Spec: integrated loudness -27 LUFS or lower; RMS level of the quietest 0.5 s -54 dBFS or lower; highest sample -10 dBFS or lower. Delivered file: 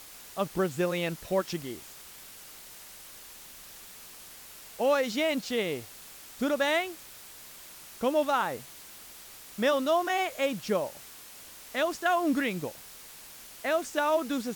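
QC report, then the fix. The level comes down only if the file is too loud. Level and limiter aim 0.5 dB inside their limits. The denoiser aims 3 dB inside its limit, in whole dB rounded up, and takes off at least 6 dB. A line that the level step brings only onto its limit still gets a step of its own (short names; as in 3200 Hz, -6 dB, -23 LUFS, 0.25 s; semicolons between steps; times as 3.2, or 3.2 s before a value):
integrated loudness -29.5 LUFS: OK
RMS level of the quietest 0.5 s -48 dBFS: fail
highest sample -14.5 dBFS: OK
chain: denoiser 9 dB, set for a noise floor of -48 dBFS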